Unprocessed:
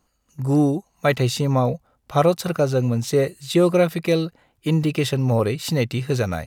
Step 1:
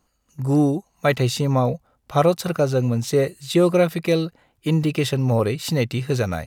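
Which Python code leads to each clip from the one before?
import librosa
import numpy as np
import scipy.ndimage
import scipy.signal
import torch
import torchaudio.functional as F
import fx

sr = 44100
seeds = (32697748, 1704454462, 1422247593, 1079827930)

y = x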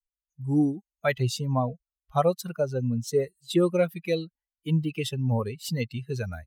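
y = fx.bin_expand(x, sr, power=2.0)
y = y * librosa.db_to_amplitude(-2.5)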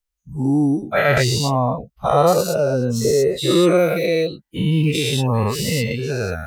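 y = fx.spec_dilate(x, sr, span_ms=240)
y = y * librosa.db_to_amplitude(3.0)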